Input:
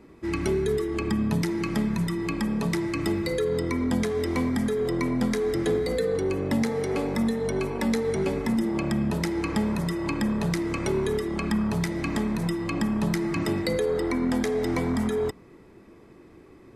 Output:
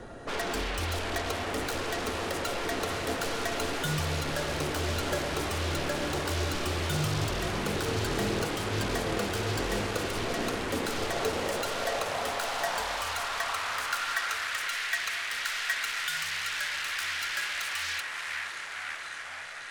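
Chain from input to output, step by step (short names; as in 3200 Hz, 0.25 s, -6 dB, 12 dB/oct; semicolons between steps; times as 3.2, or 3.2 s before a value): HPF 150 Hz 24 dB/oct; limiter -20 dBFS, peak gain reduction 7.5 dB; on a send: diffused feedback echo 0.472 s, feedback 75%, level -10 dB; on the sum: varispeed -15%; in parallel at -8.5 dB: sine folder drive 15 dB, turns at -25 dBFS; on the sum: high-pass sweep 620 Hz -> 2100 Hz, 10.98–14.91; frequency shift -280 Hz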